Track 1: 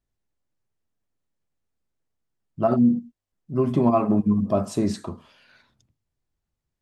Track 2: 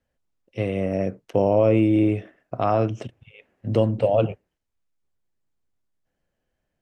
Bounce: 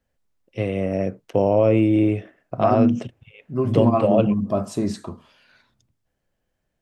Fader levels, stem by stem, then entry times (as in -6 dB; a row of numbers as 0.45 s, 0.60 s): -0.5 dB, +1.0 dB; 0.00 s, 0.00 s